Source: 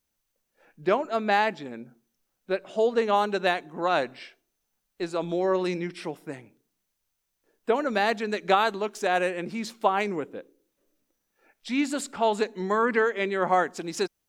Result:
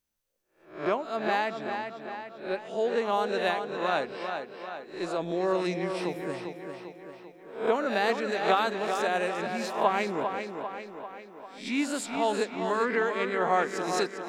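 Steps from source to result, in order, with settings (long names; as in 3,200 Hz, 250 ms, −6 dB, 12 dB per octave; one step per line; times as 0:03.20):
peak hold with a rise ahead of every peak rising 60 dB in 0.42 s
speech leveller within 4 dB 2 s
tape delay 396 ms, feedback 59%, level −6 dB, low-pass 5,900 Hz
level −4.5 dB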